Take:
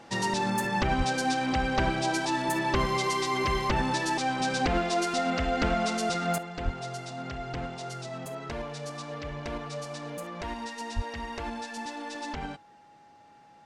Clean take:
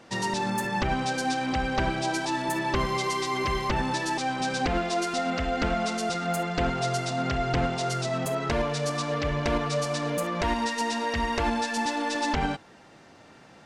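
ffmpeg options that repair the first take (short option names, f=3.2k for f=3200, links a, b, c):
-filter_complex "[0:a]bandreject=f=830:w=30,asplit=3[a][b][c];[a]afade=t=out:st=0.97:d=0.02[d];[b]highpass=f=140:w=0.5412,highpass=f=140:w=1.3066,afade=t=in:st=0.97:d=0.02,afade=t=out:st=1.09:d=0.02[e];[c]afade=t=in:st=1.09:d=0.02[f];[d][e][f]amix=inputs=3:normalize=0,asplit=3[g][h][i];[g]afade=t=out:st=6.64:d=0.02[j];[h]highpass=f=140:w=0.5412,highpass=f=140:w=1.3066,afade=t=in:st=6.64:d=0.02,afade=t=out:st=6.76:d=0.02[k];[i]afade=t=in:st=6.76:d=0.02[l];[j][k][l]amix=inputs=3:normalize=0,asplit=3[m][n][o];[m]afade=t=out:st=10.95:d=0.02[p];[n]highpass=f=140:w=0.5412,highpass=f=140:w=1.3066,afade=t=in:st=10.95:d=0.02,afade=t=out:st=11.07:d=0.02[q];[o]afade=t=in:st=11.07:d=0.02[r];[p][q][r]amix=inputs=3:normalize=0,asetnsamples=n=441:p=0,asendcmd='6.38 volume volume 9.5dB',volume=0dB"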